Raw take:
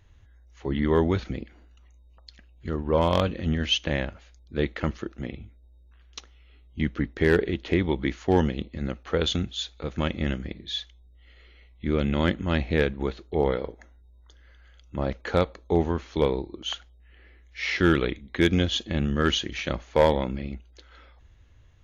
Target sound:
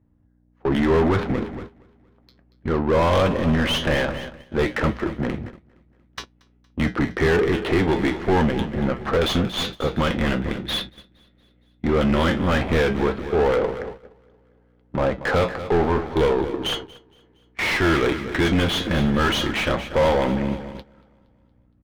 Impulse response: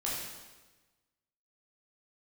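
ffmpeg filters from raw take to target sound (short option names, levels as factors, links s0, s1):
-filter_complex "[0:a]lowshelf=f=470:g=-9,aresample=16000,asoftclip=type=hard:threshold=0.119,aresample=44100,bass=f=250:g=9,treble=f=4000:g=13,adynamicsmooth=sensitivity=5:basefreq=500,aeval=exprs='0.355*sin(PI/2*1.78*val(0)/0.355)':c=same,flanger=delay=7.4:depth=1.1:regen=-74:speed=1.2:shape=triangular,aeval=exprs='val(0)+0.00251*(sin(2*PI*60*n/s)+sin(2*PI*2*60*n/s)/2+sin(2*PI*3*60*n/s)/3+sin(2*PI*4*60*n/s)/4+sin(2*PI*5*60*n/s)/5)':c=same,asplit=2[s0][s1];[s1]highpass=f=720:p=1,volume=22.4,asoftclip=type=tanh:threshold=0.299[s2];[s0][s2]amix=inputs=2:normalize=0,lowpass=f=1200:p=1,volume=0.501,aecho=1:1:233|466|699|932|1165|1398:0.237|0.135|0.077|0.0439|0.025|0.0143,agate=range=0.158:threshold=0.0251:ratio=16:detection=peak"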